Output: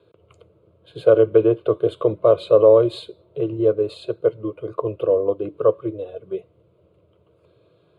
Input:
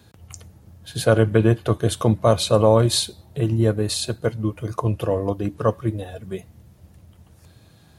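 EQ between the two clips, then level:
band-pass filter 130–4,300 Hz
parametric band 420 Hz +15 dB 2.2 octaves
phaser with its sweep stopped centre 1,200 Hz, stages 8
−8.0 dB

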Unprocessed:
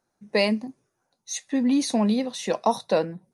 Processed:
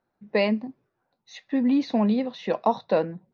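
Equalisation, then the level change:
Bessel low-pass filter 2,700 Hz, order 8
0.0 dB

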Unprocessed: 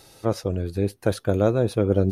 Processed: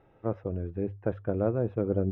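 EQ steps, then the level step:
moving average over 10 samples
high-frequency loss of the air 420 metres
mains-hum notches 50/100 Hz
−6.0 dB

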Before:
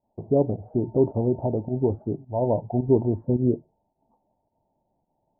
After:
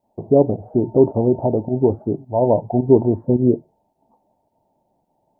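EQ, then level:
low-shelf EQ 110 Hz −9.5 dB
+8.0 dB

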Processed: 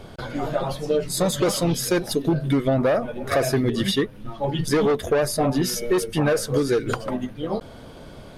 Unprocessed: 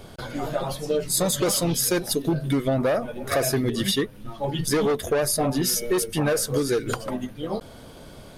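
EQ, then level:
high-shelf EQ 6,000 Hz −10.5 dB
+2.5 dB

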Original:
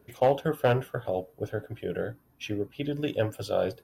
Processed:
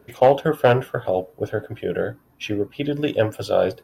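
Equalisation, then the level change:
low-shelf EQ 220 Hz −5 dB
high-shelf EQ 4,400 Hz −5.5 dB
+9.0 dB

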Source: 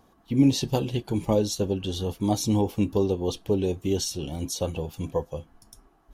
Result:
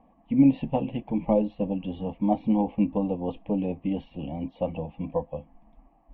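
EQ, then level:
Butterworth low-pass 2,600 Hz 48 dB per octave
phaser with its sweep stopped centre 390 Hz, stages 6
+3.0 dB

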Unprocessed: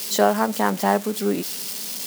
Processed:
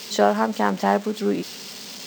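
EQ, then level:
moving average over 4 samples
0.0 dB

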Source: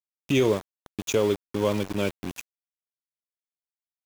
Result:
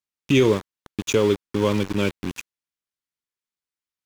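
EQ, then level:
parametric band 660 Hz −9 dB 0.57 octaves
high-shelf EQ 9,500 Hz −10 dB
+5.5 dB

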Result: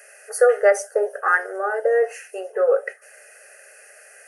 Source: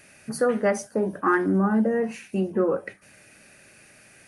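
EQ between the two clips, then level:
linear-phase brick-wall high-pass 390 Hz
phaser with its sweep stopped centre 1,000 Hz, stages 6
notch filter 2,300 Hz, Q 5.1
+8.5 dB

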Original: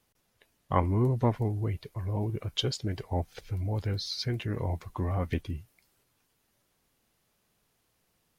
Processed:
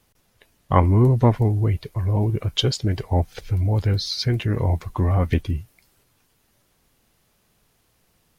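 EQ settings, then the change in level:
low-shelf EQ 110 Hz +5.5 dB
+8.0 dB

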